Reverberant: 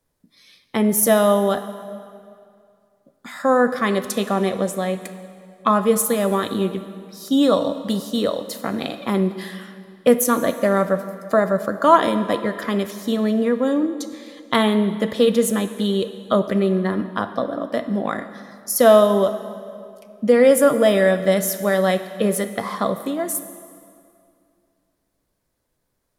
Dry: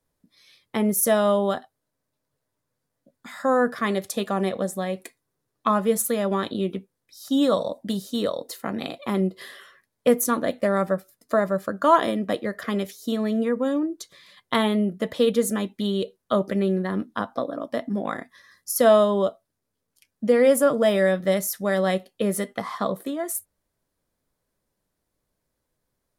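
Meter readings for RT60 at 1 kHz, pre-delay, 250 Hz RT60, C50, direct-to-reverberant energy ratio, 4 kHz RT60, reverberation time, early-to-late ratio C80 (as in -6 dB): 2.3 s, 27 ms, 2.5 s, 11.0 dB, 10.5 dB, 1.9 s, 2.3 s, 12.5 dB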